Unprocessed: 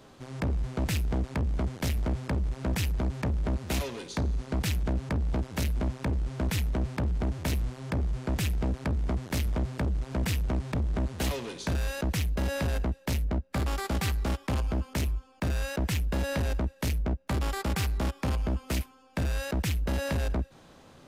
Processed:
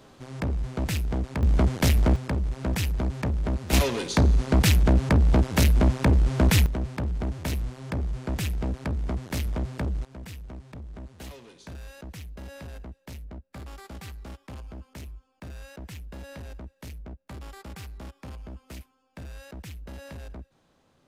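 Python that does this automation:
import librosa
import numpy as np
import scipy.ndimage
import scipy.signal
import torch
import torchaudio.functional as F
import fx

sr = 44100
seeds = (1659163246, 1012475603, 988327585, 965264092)

y = fx.gain(x, sr, db=fx.steps((0.0, 1.0), (1.43, 8.5), (2.16, 2.0), (3.73, 9.5), (6.66, 0.0), (10.05, -12.0)))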